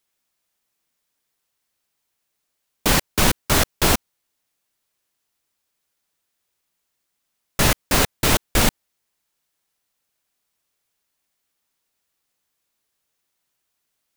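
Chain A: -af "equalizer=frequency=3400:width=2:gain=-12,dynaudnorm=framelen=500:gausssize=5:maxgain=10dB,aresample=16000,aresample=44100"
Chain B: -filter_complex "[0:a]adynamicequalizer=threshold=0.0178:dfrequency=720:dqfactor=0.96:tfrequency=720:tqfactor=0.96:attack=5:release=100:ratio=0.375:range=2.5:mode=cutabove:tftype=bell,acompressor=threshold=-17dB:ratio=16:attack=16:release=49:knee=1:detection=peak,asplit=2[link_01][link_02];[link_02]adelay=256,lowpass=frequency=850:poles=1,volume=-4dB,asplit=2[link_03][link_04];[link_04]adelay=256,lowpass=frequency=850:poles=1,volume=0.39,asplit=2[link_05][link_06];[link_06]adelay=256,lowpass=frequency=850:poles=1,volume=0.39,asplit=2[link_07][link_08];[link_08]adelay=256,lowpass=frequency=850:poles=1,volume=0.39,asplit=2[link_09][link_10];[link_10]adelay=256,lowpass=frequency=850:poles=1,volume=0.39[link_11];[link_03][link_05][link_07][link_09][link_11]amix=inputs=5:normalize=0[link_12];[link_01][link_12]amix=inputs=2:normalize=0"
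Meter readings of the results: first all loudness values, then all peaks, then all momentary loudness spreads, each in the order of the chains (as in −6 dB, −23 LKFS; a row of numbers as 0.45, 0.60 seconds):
−20.5, −21.5 LKFS; −1.5, −5.0 dBFS; 4, 16 LU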